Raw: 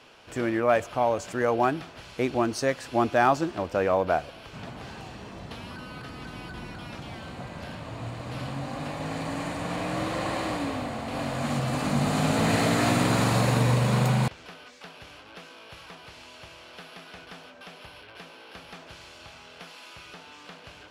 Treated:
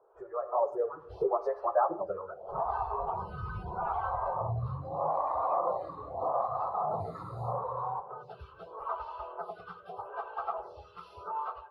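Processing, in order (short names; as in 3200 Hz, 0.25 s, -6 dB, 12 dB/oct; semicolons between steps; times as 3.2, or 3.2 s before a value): bit-crush 12-bit; compressor 12:1, threshold -38 dBFS, peak gain reduction 22 dB; spectral noise reduction 16 dB; plain phase-vocoder stretch 0.56×; EQ curve 100 Hz 0 dB, 270 Hz -20 dB, 390 Hz +12 dB, 660 Hz +8 dB, 1300 Hz +6 dB, 2000 Hz -21 dB, 6800 Hz -27 dB; spring tank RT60 1.5 s, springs 46/51/58 ms, chirp 30 ms, DRR 12.5 dB; AGC gain up to 13.5 dB; dynamic EQ 570 Hz, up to -5 dB, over -36 dBFS, Q 1.4; photocell phaser 0.8 Hz; gain +2.5 dB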